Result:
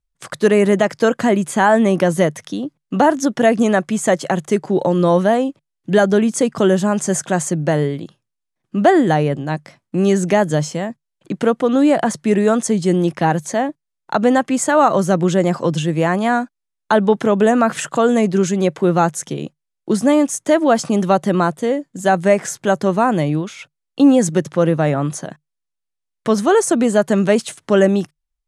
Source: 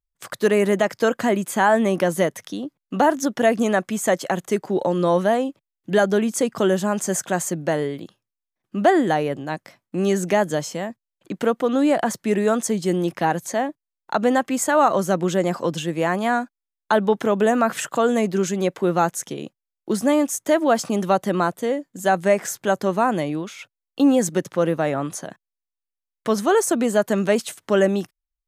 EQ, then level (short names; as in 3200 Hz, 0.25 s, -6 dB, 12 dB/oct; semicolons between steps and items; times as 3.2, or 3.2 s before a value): steep low-pass 11000 Hz 36 dB/oct; bell 150 Hz +6.5 dB 0.2 oct; low shelf 290 Hz +4.5 dB; +3.0 dB